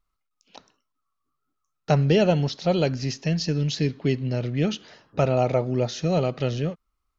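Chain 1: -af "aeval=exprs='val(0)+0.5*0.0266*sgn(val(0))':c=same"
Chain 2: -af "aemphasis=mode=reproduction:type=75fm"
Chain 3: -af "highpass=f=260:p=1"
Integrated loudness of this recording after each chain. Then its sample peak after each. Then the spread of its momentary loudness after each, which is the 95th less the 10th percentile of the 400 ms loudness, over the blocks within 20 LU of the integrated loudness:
-23.0 LUFS, -23.5 LUFS, -27.0 LUFS; -6.0 dBFS, -6.0 dBFS, -9.5 dBFS; 17 LU, 8 LU, 10 LU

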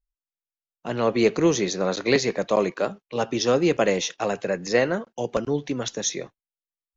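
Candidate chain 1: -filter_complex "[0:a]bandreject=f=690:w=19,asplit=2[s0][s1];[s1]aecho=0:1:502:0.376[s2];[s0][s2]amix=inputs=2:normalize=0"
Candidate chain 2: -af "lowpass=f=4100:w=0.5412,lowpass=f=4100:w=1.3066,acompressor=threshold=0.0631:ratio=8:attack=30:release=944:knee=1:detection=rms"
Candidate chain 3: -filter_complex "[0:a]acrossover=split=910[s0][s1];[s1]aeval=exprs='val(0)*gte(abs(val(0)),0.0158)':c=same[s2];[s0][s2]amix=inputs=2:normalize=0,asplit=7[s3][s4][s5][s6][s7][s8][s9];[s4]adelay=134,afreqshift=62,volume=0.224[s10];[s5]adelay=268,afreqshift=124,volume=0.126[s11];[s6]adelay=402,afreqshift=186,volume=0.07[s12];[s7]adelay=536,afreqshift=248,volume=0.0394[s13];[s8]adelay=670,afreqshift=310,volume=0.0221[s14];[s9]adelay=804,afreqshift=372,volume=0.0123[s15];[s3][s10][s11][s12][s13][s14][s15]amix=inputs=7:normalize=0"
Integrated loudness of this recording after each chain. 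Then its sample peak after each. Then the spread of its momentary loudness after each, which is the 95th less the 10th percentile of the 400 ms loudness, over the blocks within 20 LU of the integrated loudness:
-23.5 LUFS, -31.5 LUFS, -23.5 LUFS; -5.5 dBFS, -15.0 dBFS, -7.0 dBFS; 12 LU, 5 LU, 9 LU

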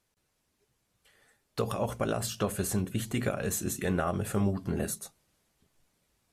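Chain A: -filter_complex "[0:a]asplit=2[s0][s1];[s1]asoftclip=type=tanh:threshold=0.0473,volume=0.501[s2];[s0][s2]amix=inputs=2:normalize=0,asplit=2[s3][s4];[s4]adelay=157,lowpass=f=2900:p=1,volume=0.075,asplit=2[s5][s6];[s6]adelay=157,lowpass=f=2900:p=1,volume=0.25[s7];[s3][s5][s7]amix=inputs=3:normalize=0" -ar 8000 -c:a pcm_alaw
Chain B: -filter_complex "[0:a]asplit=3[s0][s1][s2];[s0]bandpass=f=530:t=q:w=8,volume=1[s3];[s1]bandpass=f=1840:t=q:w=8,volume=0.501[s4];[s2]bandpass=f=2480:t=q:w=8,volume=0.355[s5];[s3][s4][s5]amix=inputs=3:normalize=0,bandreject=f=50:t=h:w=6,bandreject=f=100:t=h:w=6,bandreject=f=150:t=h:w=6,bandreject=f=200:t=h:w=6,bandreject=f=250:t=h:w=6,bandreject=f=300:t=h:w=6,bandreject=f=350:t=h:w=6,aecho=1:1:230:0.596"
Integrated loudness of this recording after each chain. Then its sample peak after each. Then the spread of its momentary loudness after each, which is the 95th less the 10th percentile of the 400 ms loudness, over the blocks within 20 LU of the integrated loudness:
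-30.0 LUFS, -41.5 LUFS; -14.5 dBFS, -24.0 dBFS; 5 LU, 11 LU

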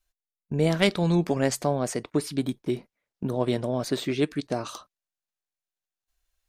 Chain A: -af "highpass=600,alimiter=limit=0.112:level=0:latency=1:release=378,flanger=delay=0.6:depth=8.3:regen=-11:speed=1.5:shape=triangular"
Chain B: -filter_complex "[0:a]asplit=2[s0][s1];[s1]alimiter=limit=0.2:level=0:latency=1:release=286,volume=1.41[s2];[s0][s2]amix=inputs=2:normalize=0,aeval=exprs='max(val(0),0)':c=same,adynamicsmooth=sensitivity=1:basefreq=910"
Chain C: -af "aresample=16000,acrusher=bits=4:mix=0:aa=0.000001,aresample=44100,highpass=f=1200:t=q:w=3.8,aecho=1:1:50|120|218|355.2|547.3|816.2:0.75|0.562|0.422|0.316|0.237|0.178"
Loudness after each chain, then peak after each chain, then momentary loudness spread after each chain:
-38.5 LUFS, -26.0 LUFS, -26.5 LUFS; -20.0 dBFS, -6.0 dBFS, -4.0 dBFS; 10 LU, 7 LU, 14 LU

